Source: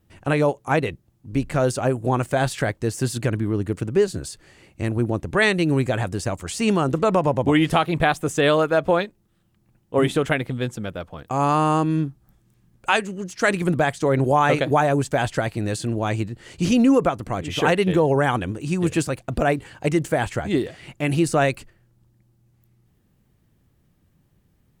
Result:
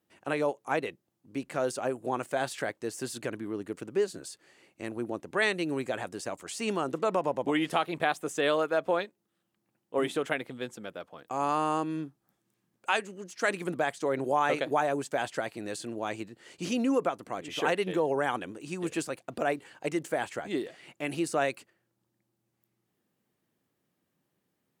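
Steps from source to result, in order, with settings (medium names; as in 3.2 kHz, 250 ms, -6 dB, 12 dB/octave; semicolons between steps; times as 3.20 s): high-pass 280 Hz 12 dB/octave; trim -8 dB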